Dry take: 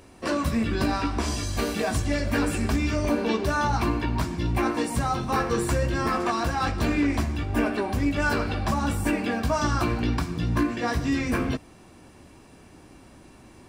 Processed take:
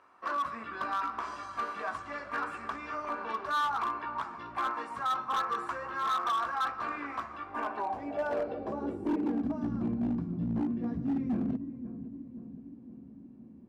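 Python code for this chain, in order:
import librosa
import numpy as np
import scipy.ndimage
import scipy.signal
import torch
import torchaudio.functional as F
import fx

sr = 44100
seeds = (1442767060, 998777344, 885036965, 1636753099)

y = fx.echo_filtered(x, sr, ms=521, feedback_pct=61, hz=980.0, wet_db=-11.5)
y = fx.filter_sweep_bandpass(y, sr, from_hz=1200.0, to_hz=210.0, start_s=7.43, end_s=9.79, q=4.3)
y = np.clip(10.0 ** (29.5 / 20.0) * y, -1.0, 1.0) / 10.0 ** (29.5 / 20.0)
y = y * librosa.db_to_amplitude(3.5)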